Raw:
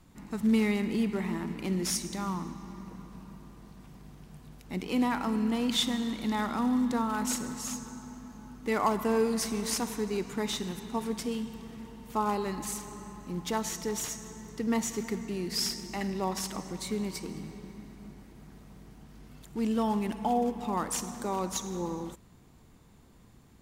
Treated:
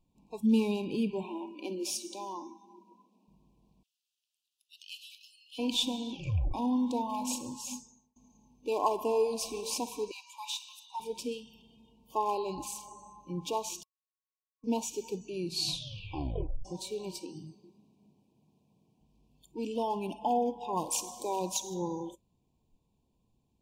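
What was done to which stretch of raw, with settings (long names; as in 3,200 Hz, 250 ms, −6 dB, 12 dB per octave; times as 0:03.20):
0:01.23–0:03.28: elliptic high-pass filter 210 Hz
0:03.83–0:05.59: Butterworth high-pass 2,700 Hz 72 dB per octave
0:06.11: tape stop 0.43 s
0:07.74–0:08.16: fade out
0:10.11–0:11.00: Butterworth high-pass 800 Hz 72 dB per octave
0:13.83–0:14.64: beep over 1,360 Hz −13.5 dBFS
0:15.44: tape stop 1.21 s
0:17.19–0:19.01: high-pass filter 94 Hz 24 dB per octave
0:20.76–0:21.74: high-shelf EQ 4,000 Hz +6 dB
whole clip: brick-wall band-stop 1,100–2,300 Hz; high-shelf EQ 6,200 Hz −6 dB; noise reduction from a noise print of the clip's start 17 dB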